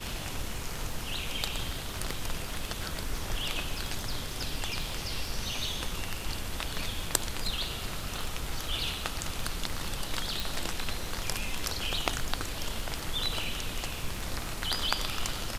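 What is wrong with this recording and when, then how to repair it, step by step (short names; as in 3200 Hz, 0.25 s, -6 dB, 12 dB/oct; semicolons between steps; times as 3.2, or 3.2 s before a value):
crackle 28/s -36 dBFS
10.4 pop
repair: de-click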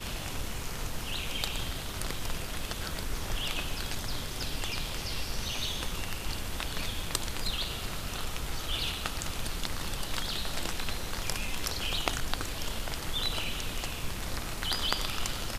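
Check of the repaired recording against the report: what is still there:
10.4 pop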